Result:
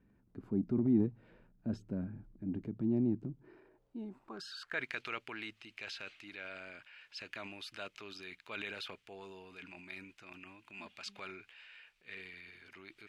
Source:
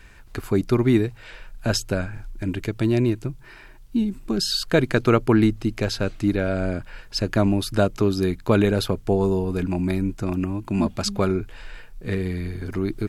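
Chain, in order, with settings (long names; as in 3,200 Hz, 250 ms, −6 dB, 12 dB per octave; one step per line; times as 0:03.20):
band-pass filter sweep 220 Hz → 2,600 Hz, 0:03.24–0:05.00
transient designer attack −3 dB, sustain +6 dB
level −6 dB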